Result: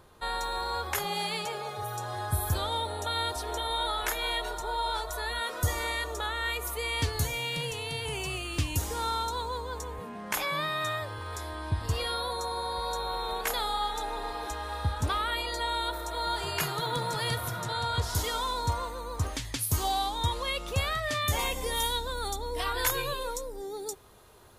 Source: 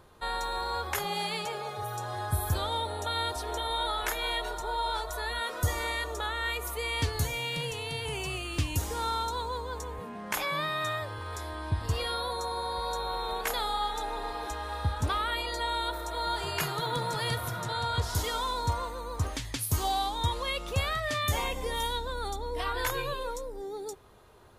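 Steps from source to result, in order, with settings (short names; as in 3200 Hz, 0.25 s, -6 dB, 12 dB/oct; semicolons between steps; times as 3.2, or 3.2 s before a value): high shelf 4400 Hz +2.5 dB, from 21.39 s +9.5 dB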